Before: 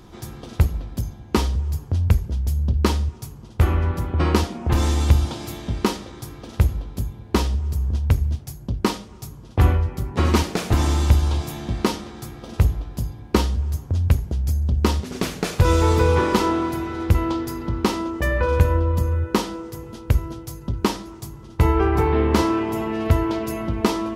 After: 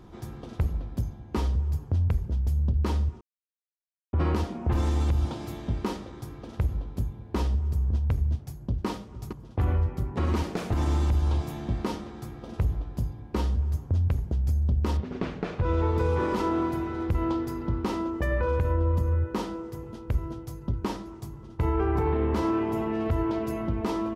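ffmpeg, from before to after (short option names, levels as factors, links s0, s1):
-filter_complex "[0:a]asplit=2[s0][s1];[s1]afade=t=in:st=8.29:d=0.01,afade=t=out:st=8.86:d=0.01,aecho=0:1:460|920:0.188365|0.037673[s2];[s0][s2]amix=inputs=2:normalize=0,asettb=1/sr,asplit=3[s3][s4][s5];[s3]atrim=end=14.974[s6];[s4]atrim=start=14.97:end=15.98,asetpts=PTS-STARTPTS,afade=t=in:d=0.004:c=qsin,afade=t=out:st=1.006:d=0.004:c=qsin,lowpass=3200[s7];[s5]atrim=start=15.976[s8];[s6][s7]acrossfade=d=0.004:c1=hsin:c2=qsin[s9];[s9][s8]acrossfade=d=0.004:c1=qsin:c2=hsin,asplit=3[s10][s11][s12];[s10]atrim=end=3.21,asetpts=PTS-STARTPTS,afade=t=out:st=3.206:d=0.004:c=hsin[s13];[s11]atrim=start=3.21:end=4.13,asetpts=PTS-STARTPTS,volume=0[s14];[s12]atrim=start=4.13,asetpts=PTS-STARTPTS,afade=t=in:d=0.004:c=hsin[s15];[s13][s14][s15]concat=n=3:v=0:a=1,alimiter=limit=0.211:level=0:latency=1:release=69,highshelf=f=2300:g=-10,volume=0.708"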